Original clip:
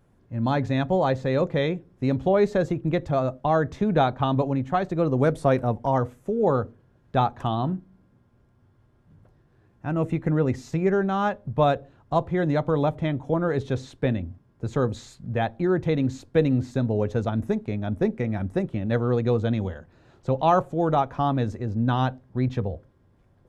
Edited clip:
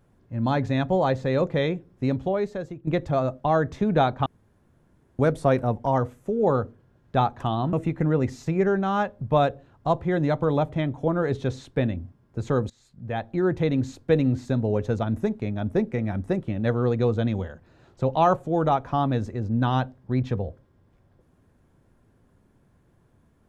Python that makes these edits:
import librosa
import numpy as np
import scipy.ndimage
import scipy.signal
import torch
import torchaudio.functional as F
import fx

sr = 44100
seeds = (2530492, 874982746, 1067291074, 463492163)

y = fx.edit(x, sr, fx.fade_out_to(start_s=2.04, length_s=0.83, curve='qua', floor_db=-11.5),
    fx.room_tone_fill(start_s=4.26, length_s=0.93),
    fx.cut(start_s=7.73, length_s=2.26),
    fx.fade_in_from(start_s=14.96, length_s=0.78, floor_db=-23.5), tone=tone)